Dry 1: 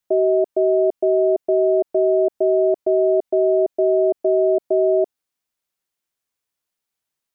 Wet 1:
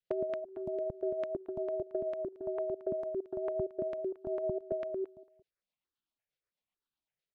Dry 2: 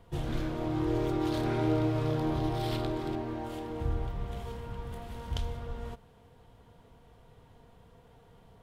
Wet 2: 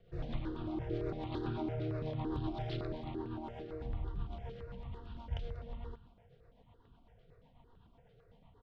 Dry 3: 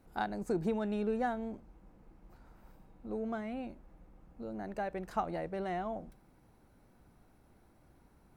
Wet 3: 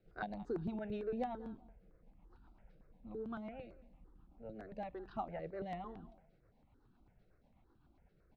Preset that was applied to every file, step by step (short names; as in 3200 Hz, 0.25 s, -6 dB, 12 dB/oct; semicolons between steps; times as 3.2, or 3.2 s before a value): LPF 4300 Hz 24 dB/oct; compressor 6:1, threshold -26 dBFS; rotary speaker horn 8 Hz; feedback echo 0.189 s, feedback 24%, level -18 dB; step phaser 8.9 Hz 260–2100 Hz; gain -2 dB